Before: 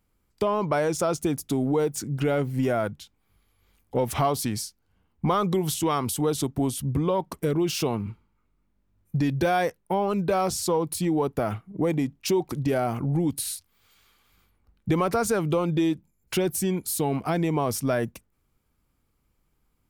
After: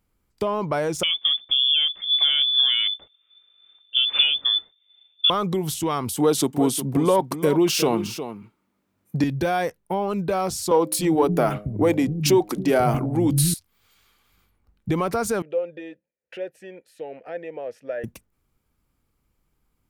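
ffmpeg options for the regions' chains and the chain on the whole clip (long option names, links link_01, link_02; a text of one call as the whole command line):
ffmpeg -i in.wav -filter_complex "[0:a]asettb=1/sr,asplit=3[link_01][link_02][link_03];[link_01]atrim=end=1.034[link_04];[link_02]atrim=start=1.03:end=5.3,asetpts=PTS-STARTPTS,afade=type=in:duration=0.004:curve=qsin,afade=type=out:start_time=4.266:duration=0.004:curve=qsin,equalizer=frequency=80:width_type=o:width=1.8:gain=15,lowpass=frequency=3100:width_type=q:width=0.5098,lowpass=frequency=3100:width_type=q:width=0.6013,lowpass=frequency=3100:width_type=q:width=0.9,lowpass=frequency=3100:width_type=q:width=2.563,afreqshift=-3600[link_05];[link_03]atrim=start=5.296[link_06];[link_04][link_05]acrossfade=duration=0.004:curve1=hsin:curve2=qsin[link_07];[link_07][link_06]acrossfade=duration=0.004:curve1=qsin:curve2=hsin,asettb=1/sr,asplit=3[link_08][link_09][link_10];[link_08]atrim=end=6.174[link_11];[link_09]atrim=start=6.17:end=9.24,asetpts=PTS-STARTPTS,afade=type=in:duration=0.004:curve=qsin,afade=type=out:start_time=3.066:duration=0.004:curve=qsin,highpass=210,acontrast=73,aecho=1:1:359:0.282,atrim=end_sample=135387[link_12];[link_10]atrim=start=9.236[link_13];[link_11][link_12]acrossfade=duration=0.004:curve1=hsin:curve2=qsin[link_14];[link_14][link_13]acrossfade=duration=0.004:curve1=qsin:curve2=hsin,asettb=1/sr,asplit=3[link_15][link_16][link_17];[link_15]atrim=end=10.714[link_18];[link_16]atrim=start=10.71:end=13.54,asetpts=PTS-STARTPTS,afade=type=in:duration=0.004:curve=qsin,afade=type=out:start_time=2.826:duration=0.004:curve=qsin,bandreject=frequency=103.8:width_type=h:width=4,bandreject=frequency=207.6:width_type=h:width=4,bandreject=frequency=311.4:width_type=h:width=4,bandreject=frequency=415.2:width_type=h:width=4,bandreject=frequency=519:width_type=h:width=4,bandreject=frequency=622.8:width_type=h:width=4,bandreject=frequency=726.6:width_type=h:width=4,acontrast=83,acrossover=split=200[link_19][link_20];[link_19]adelay=280[link_21];[link_21][link_20]amix=inputs=2:normalize=0,atrim=end_sample=124803[link_22];[link_17]atrim=start=13.536[link_23];[link_18][link_22]acrossfade=duration=0.004:curve1=hsin:curve2=qsin[link_24];[link_24][link_23]acrossfade=duration=0.004:curve1=qsin:curve2=hsin,asettb=1/sr,asplit=3[link_25][link_26][link_27];[link_25]atrim=end=15.424[link_28];[link_26]atrim=start=15.42:end=18.04,asetpts=PTS-STARTPTS,afade=type=in:duration=0.004:curve=qsin,afade=type=out:start_time=2.616:duration=0.004:curve=qsin,asplit=3[link_29][link_30][link_31];[link_29]bandpass=frequency=530:width_type=q:width=8,volume=0dB[link_32];[link_30]bandpass=frequency=1840:width_type=q:width=8,volume=-6dB[link_33];[link_31]bandpass=frequency=2480:width_type=q:width=8,volume=-9dB[link_34];[link_32][link_33][link_34]amix=inputs=3:normalize=0,equalizer=frequency=1100:width=0.94:gain=11[link_35];[link_27]atrim=start=18.036[link_36];[link_28][link_35]acrossfade=duration=0.004:curve1=hsin:curve2=qsin[link_37];[link_37][link_36]acrossfade=duration=0.004:curve1=qsin:curve2=hsin" out.wav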